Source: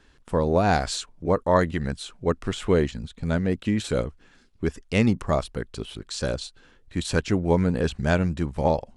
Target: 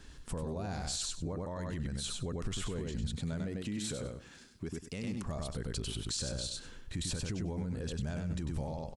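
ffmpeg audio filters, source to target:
-filter_complex "[0:a]acompressor=threshold=0.0251:ratio=6,asettb=1/sr,asplit=3[s0][s1][s2];[s0]atrim=end=3.104[s3];[s1]atrim=start=3.1:end=5.26,asetpts=PTS-STARTPTS,afade=t=in:d=0.004:c=qsin,afade=t=out:st=2.156:d=0.004:c=qsin,highpass=f=170:p=1[s4];[s2]atrim=start=5.256[s5];[s3][s4]acrossfade=d=0.004:c1=hsin:c2=qsin[s6];[s6][s5]acrossfade=d=0.004:c1=qsin:c2=hsin,aecho=1:1:98|196|294:0.501|0.0852|0.0145,alimiter=level_in=2.99:limit=0.0631:level=0:latency=1:release=28,volume=0.335,bass=f=250:g=7,treble=f=4000:g=9"

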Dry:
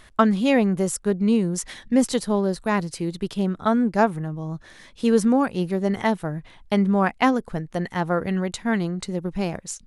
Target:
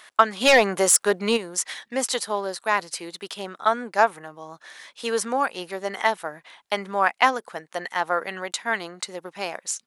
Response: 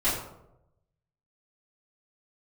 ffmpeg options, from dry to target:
-filter_complex "[0:a]highpass=750,asplit=3[s0][s1][s2];[s0]afade=t=out:st=0.4:d=0.02[s3];[s1]aeval=exprs='0.211*sin(PI/2*1.78*val(0)/0.211)':c=same,afade=t=in:st=0.4:d=0.02,afade=t=out:st=1.36:d=0.02[s4];[s2]afade=t=in:st=1.36:d=0.02[s5];[s3][s4][s5]amix=inputs=3:normalize=0,volume=1.68"

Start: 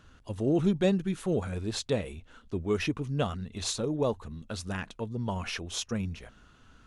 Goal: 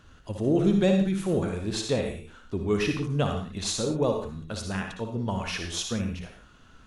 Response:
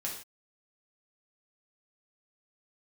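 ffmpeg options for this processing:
-filter_complex "[0:a]asplit=2[s0][s1];[1:a]atrim=start_sample=2205,atrim=end_sample=6174,adelay=58[s2];[s1][s2]afir=irnorm=-1:irlink=0,volume=0.531[s3];[s0][s3]amix=inputs=2:normalize=0,volume=1.26"

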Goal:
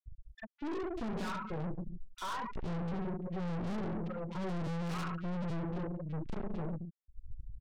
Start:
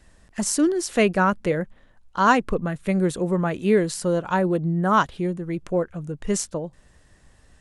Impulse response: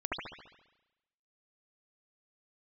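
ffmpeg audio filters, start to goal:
-filter_complex "[0:a]lowpass=7600,asplit=2[s0][s1];[s1]adelay=18,volume=0.562[s2];[s0][s2]amix=inputs=2:normalize=0,alimiter=limit=0.224:level=0:latency=1:release=189,acrossover=split=790[s3][s4];[s3]aeval=exprs='val(0)*(1-1/2+1/2*cos(2*PI*1.1*n/s))':c=same[s5];[s4]aeval=exprs='val(0)*(1-1/2-1/2*cos(2*PI*1.1*n/s))':c=same[s6];[s5][s6]amix=inputs=2:normalize=0,acrossover=split=150|3000[s7][s8][s9];[s8]acompressor=threshold=0.0251:ratio=1.5[s10];[s7][s10][s9]amix=inputs=3:normalize=0,bass=f=250:g=12,treble=f=4000:g=-11,asplit=2[s11][s12];[1:a]atrim=start_sample=2205[s13];[s12][s13]afir=irnorm=-1:irlink=0,volume=0.355[s14];[s11][s14]amix=inputs=2:normalize=0,afftfilt=real='re*gte(hypot(re,im),0.1)':imag='im*gte(hypot(re,im),0.1)':win_size=1024:overlap=0.75,aeval=exprs='(tanh(63.1*val(0)+0.5)-tanh(0.5))/63.1':c=same,acrossover=split=2300[s15][s16];[s15]adelay=40[s17];[s17][s16]amix=inputs=2:normalize=0"

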